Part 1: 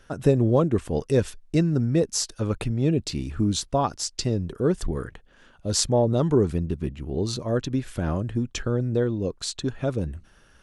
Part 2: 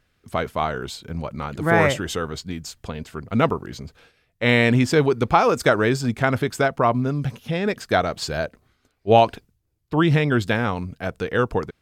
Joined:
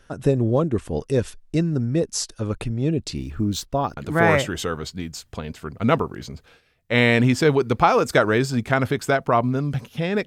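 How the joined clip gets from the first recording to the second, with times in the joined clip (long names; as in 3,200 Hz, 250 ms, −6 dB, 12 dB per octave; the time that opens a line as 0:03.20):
part 1
0:03.17–0:03.97: linearly interpolated sample-rate reduction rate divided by 2×
0:03.97: continue with part 2 from 0:01.48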